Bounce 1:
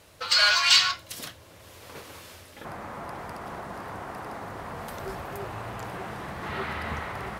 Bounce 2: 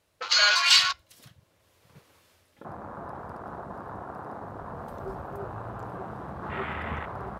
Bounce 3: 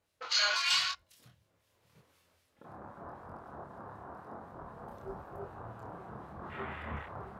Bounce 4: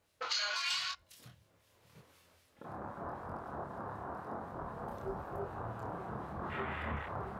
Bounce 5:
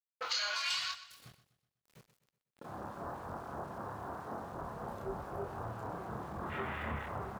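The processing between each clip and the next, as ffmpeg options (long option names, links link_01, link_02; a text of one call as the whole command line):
ffmpeg -i in.wav -af "afwtdn=0.0224" out.wav
ffmpeg -i in.wav -filter_complex "[0:a]flanger=delay=22.5:depth=7.2:speed=0.91,acrossover=split=1800[link_01][link_02];[link_01]aeval=exprs='val(0)*(1-0.5/2+0.5/2*cos(2*PI*3.9*n/s))':channel_layout=same[link_03];[link_02]aeval=exprs='val(0)*(1-0.5/2-0.5/2*cos(2*PI*3.9*n/s))':channel_layout=same[link_04];[link_03][link_04]amix=inputs=2:normalize=0,volume=-3dB" out.wav
ffmpeg -i in.wav -af "acompressor=threshold=-39dB:ratio=4,volume=4.5dB" out.wav
ffmpeg -i in.wav -af "aeval=exprs='val(0)*gte(abs(val(0)),0.00158)':channel_layout=same,aecho=1:1:124|248|372|496:0.178|0.08|0.036|0.0162" out.wav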